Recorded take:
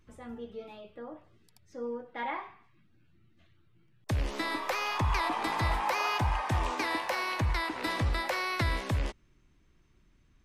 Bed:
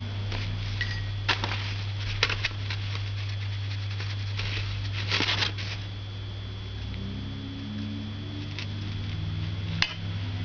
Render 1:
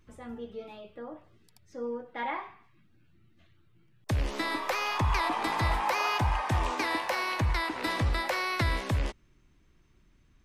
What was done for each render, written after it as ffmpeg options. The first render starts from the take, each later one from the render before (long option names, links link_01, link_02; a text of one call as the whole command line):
ffmpeg -i in.wav -af "volume=1.5dB" out.wav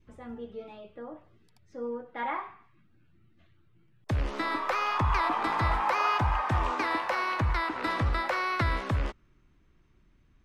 ffmpeg -i in.wav -af "lowpass=frequency=2900:poles=1,adynamicequalizer=threshold=0.00355:dfrequency=1300:dqfactor=2.7:tfrequency=1300:tqfactor=2.7:attack=5:release=100:ratio=0.375:range=3.5:mode=boostabove:tftype=bell" out.wav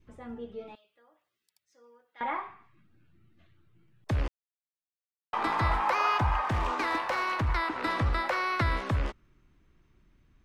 ffmpeg -i in.wav -filter_complex "[0:a]asettb=1/sr,asplit=3[link_01][link_02][link_03];[link_01]atrim=end=0.754[link_04];[link_02]atrim=start=0.75:end=2.21,asetpts=PTS-STARTPTS,afade=type=in:duration=0.004:curve=qsin,afade=type=out:start_time=1.456:duration=0.004:curve=qsin,aderivative[link_05];[link_03]atrim=start=2.206[link_06];[link_04][link_05]acrossfade=duration=0.004:curve1=hsin:curve2=qsin[link_07];[link_07][link_06]acrossfade=duration=0.004:curve1=qsin:curve2=hsin,asettb=1/sr,asplit=3[link_08][link_09][link_10];[link_08]atrim=end=6.424[link_11];[link_09]atrim=start=6.42:end=7.48,asetpts=PTS-STARTPTS,afade=type=in:duration=0.004:curve=qsin,afade=type=out:start_time=1.056:duration=0.004:curve=qsin,asoftclip=type=hard:threshold=-24dB[link_12];[link_10]atrim=start=7.476[link_13];[link_11][link_12]acrossfade=duration=0.004:curve1=hsin:curve2=qsin[link_14];[link_14][link_13]acrossfade=duration=0.004:curve1=qsin:curve2=hsin,asplit=3[link_15][link_16][link_17];[link_15]atrim=end=4.28,asetpts=PTS-STARTPTS,afade=type=out:start_time=4.276:duration=0.004:curve=hsin[link_18];[link_16]atrim=start=4.28:end=5.33,asetpts=PTS-STARTPTS,volume=0[link_19];[link_17]atrim=start=5.33,asetpts=PTS-STARTPTS,afade=type=in:duration=0.004:curve=hsin[link_20];[link_18][link_19][link_20]concat=n=3:v=0:a=1" out.wav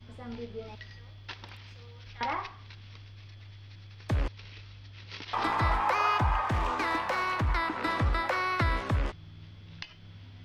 ffmpeg -i in.wav -i bed.wav -filter_complex "[1:a]volume=-17dB[link_01];[0:a][link_01]amix=inputs=2:normalize=0" out.wav